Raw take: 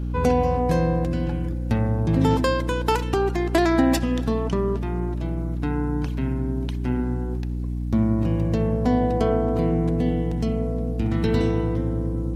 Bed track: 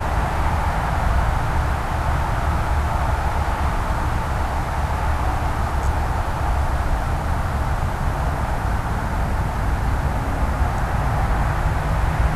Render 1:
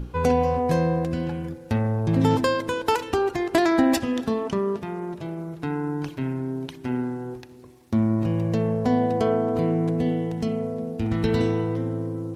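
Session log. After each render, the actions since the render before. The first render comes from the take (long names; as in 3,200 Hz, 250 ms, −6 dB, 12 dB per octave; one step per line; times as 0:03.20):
mains-hum notches 60/120/180/240/300/360 Hz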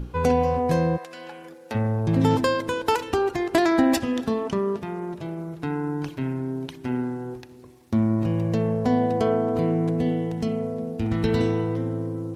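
0:00.96–0:01.74: high-pass filter 1,100 Hz → 380 Hz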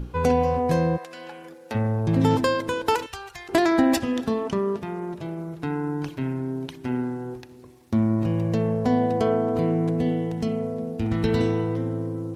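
0:03.06–0:03.49: guitar amp tone stack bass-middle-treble 10-0-10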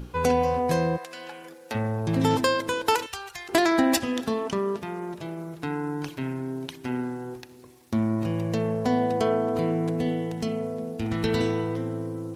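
spectral tilt +1.5 dB per octave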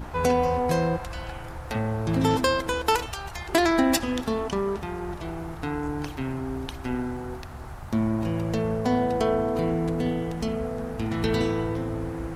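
mix in bed track −17.5 dB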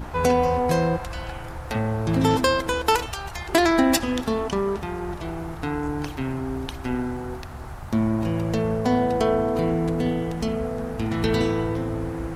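level +2.5 dB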